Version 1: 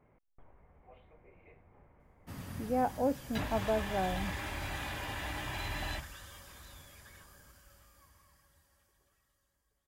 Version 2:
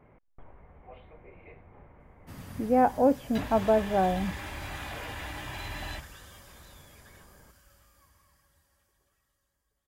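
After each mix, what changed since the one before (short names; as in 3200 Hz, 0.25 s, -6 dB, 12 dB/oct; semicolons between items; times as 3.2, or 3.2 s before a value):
speech +8.5 dB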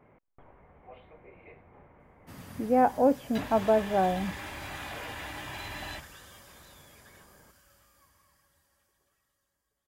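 master: add low shelf 76 Hz -11.5 dB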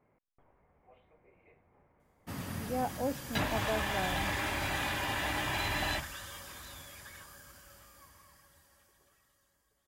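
speech -11.5 dB; background +6.5 dB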